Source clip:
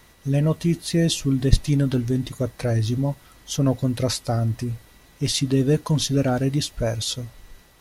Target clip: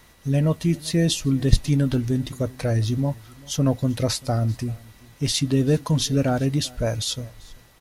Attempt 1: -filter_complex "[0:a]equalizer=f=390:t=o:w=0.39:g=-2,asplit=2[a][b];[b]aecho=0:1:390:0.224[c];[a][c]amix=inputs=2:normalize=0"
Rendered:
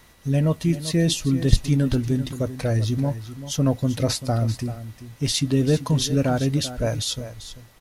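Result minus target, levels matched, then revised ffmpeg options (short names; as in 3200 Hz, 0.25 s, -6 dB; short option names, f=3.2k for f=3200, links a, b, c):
echo-to-direct +10.5 dB
-filter_complex "[0:a]equalizer=f=390:t=o:w=0.39:g=-2,asplit=2[a][b];[b]aecho=0:1:390:0.0668[c];[a][c]amix=inputs=2:normalize=0"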